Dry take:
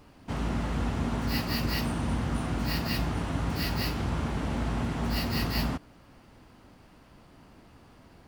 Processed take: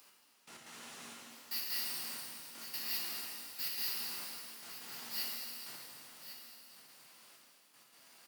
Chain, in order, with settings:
sub-octave generator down 1 octave, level −1 dB
high-pass filter 140 Hz 24 dB per octave
first difference
upward compression, threshold −51 dBFS
gate pattern "x....x.xxxx" 159 BPM −24 dB
single-tap delay 1,102 ms −12 dB
reverb with rising layers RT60 2.7 s, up +12 semitones, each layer −8 dB, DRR −3 dB
level −3.5 dB

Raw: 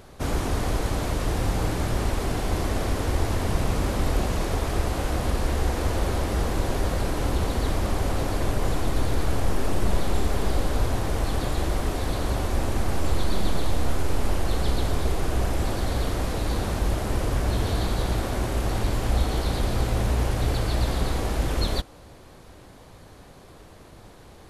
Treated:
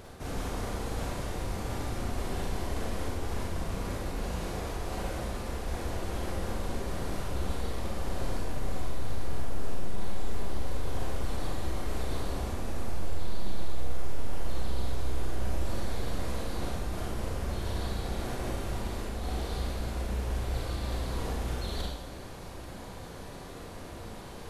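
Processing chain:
reversed playback
downward compressor 10 to 1, threshold −34 dBFS, peak gain reduction 19 dB
reversed playback
four-comb reverb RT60 0.86 s, combs from 32 ms, DRR −3 dB

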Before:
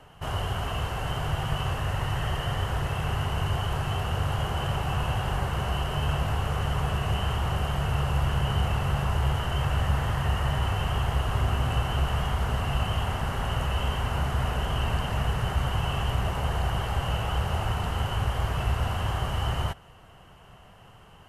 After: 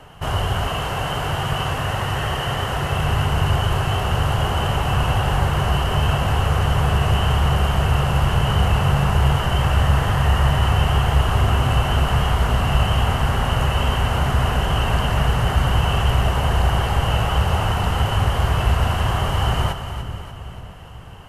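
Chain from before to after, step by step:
0:00.67–0:02.92: low-shelf EQ 76 Hz −11 dB
echo with a time of its own for lows and highs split 450 Hz, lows 493 ms, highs 293 ms, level −9.5 dB
level +8 dB

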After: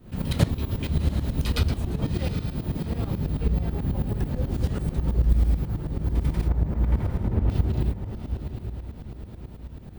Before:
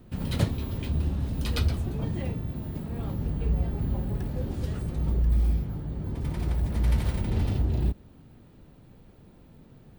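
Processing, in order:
in parallel at −2.5 dB: downward compressor, threshold −33 dBFS, peak gain reduction 14.5 dB
0:06.48–0:07.50: on the sum: low-pass filter 1,400 Hz 12 dB per octave
on a send: feedback delay with all-pass diffusion 730 ms, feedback 48%, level −8.5 dB
on the sum: shaped tremolo saw up 9.2 Hz, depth 80%
level +4 dB

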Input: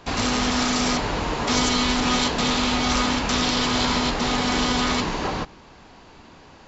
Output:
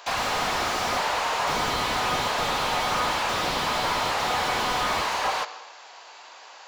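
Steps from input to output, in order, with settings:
high-pass filter 600 Hz 24 dB per octave
high-shelf EQ 4,900 Hz +7 dB
on a send at −14.5 dB: convolution reverb RT60 0.95 s, pre-delay 98 ms
on the sum: slew-rate limiting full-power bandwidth 80 Hz
level +3.5 dB

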